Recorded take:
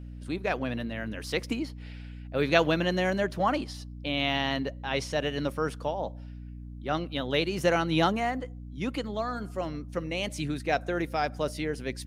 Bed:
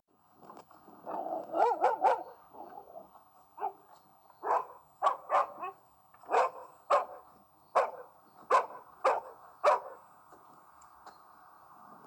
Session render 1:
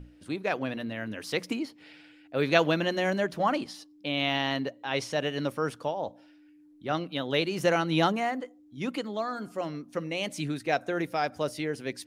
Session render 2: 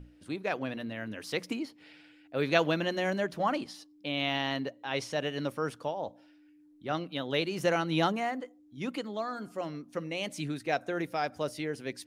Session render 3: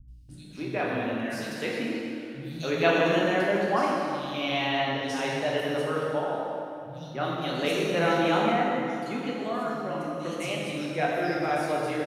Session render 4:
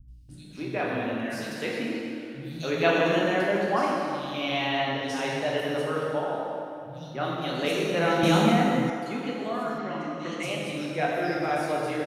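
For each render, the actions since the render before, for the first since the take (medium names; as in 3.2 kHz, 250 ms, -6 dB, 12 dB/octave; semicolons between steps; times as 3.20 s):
hum notches 60/120/180/240 Hz
trim -3 dB
three bands offset in time lows, highs, mids 80/290 ms, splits 160/4100 Hz; plate-style reverb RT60 2.7 s, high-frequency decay 0.7×, DRR -4.5 dB
8.23–8.90 s: tone controls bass +13 dB, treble +14 dB; 9.78–10.43 s: cabinet simulation 140–7000 Hz, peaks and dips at 230 Hz +4 dB, 540 Hz -5 dB, 2 kHz +8 dB, 3.2 kHz +3 dB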